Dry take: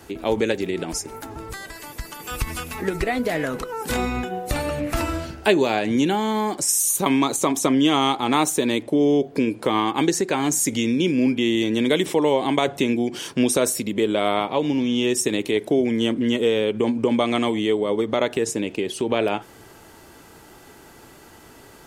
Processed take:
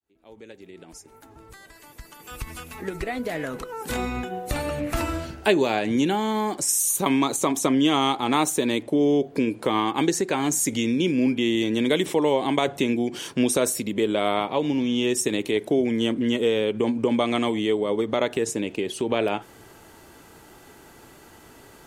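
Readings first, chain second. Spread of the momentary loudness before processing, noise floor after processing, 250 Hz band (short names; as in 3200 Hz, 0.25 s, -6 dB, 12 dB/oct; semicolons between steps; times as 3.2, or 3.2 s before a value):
9 LU, -50 dBFS, -2.0 dB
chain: opening faded in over 4.94 s; bell 5100 Hz -2.5 dB 0.22 oct; gain -2 dB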